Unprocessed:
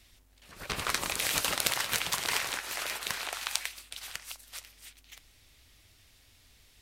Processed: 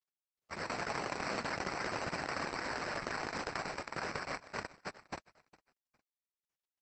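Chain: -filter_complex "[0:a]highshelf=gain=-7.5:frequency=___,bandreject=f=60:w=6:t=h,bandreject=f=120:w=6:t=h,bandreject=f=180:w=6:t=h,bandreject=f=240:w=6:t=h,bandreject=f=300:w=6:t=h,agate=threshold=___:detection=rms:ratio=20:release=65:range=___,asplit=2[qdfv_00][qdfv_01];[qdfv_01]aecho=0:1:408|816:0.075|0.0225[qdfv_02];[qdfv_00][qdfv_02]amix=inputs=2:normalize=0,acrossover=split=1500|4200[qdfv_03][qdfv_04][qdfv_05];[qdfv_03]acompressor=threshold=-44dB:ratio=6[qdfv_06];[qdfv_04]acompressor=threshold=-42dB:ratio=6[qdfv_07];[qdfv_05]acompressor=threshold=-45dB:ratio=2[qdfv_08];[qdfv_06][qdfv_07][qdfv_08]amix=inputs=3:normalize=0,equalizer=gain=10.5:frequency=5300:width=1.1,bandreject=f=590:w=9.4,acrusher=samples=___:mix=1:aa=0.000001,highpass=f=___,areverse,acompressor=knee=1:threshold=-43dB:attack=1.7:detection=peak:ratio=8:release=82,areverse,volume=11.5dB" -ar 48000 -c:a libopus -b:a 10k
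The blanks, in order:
3200, -53dB, -56dB, 13, 100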